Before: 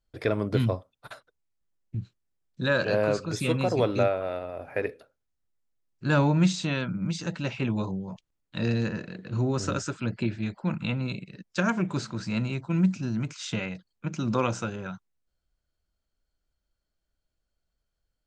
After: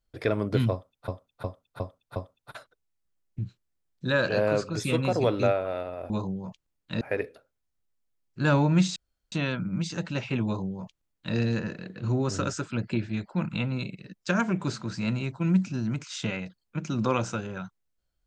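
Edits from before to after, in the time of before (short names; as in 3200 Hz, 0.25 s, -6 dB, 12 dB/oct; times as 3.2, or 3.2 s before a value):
0.72–1.08 loop, 5 plays
6.61 insert room tone 0.36 s
7.74–8.65 copy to 4.66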